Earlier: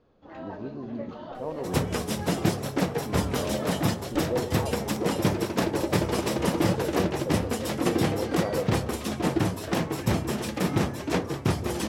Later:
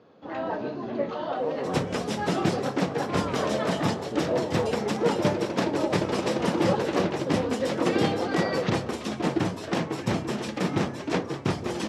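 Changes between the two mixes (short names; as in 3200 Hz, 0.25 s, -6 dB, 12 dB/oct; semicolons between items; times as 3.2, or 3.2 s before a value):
first sound +10.0 dB; master: add BPF 130–6500 Hz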